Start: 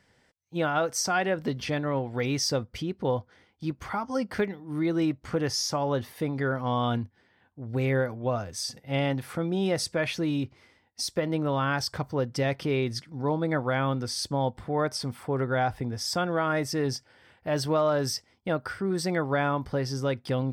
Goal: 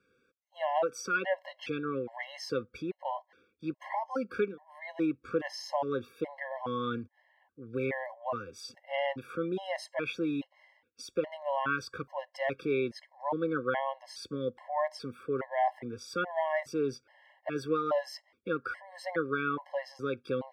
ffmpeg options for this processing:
ffmpeg -i in.wav -filter_complex "[0:a]acrossover=split=270 3200:gain=0.178 1 0.2[link_01][link_02][link_03];[link_01][link_02][link_03]amix=inputs=3:normalize=0,afftfilt=real='re*gt(sin(2*PI*1.2*pts/sr)*(1-2*mod(floor(b*sr/1024/550),2)),0)':imag='im*gt(sin(2*PI*1.2*pts/sr)*(1-2*mod(floor(b*sr/1024/550),2)),0)':win_size=1024:overlap=0.75" out.wav

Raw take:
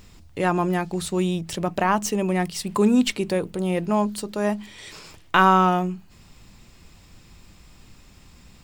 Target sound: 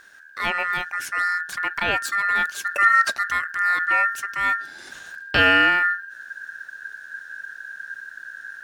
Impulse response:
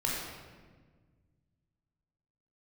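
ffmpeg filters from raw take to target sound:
-af "asubboost=boost=6:cutoff=190,aeval=exprs='val(0)*sin(2*PI*1600*n/s)':channel_layout=same"

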